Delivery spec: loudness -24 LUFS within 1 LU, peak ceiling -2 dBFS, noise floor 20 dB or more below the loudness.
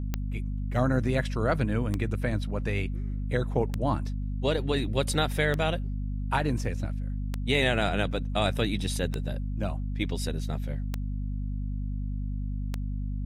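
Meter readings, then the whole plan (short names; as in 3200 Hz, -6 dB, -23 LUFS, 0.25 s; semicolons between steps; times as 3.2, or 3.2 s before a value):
clicks 8; hum 50 Hz; harmonics up to 250 Hz; hum level -29 dBFS; loudness -29.5 LUFS; peak -11.0 dBFS; loudness target -24.0 LUFS
-> de-click; notches 50/100/150/200/250 Hz; gain +5.5 dB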